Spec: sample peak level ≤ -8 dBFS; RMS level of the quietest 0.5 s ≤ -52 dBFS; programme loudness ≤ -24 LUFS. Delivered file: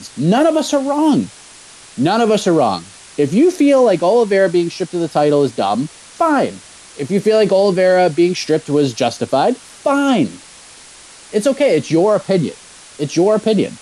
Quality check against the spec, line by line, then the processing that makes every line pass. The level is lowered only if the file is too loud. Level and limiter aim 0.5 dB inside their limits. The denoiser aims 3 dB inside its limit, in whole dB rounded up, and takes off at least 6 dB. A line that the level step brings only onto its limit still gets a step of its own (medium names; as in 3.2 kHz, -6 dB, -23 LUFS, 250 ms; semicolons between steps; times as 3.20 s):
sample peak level -4.0 dBFS: fail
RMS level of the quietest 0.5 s -40 dBFS: fail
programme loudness -15.0 LUFS: fail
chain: noise reduction 6 dB, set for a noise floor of -40 dBFS; trim -9.5 dB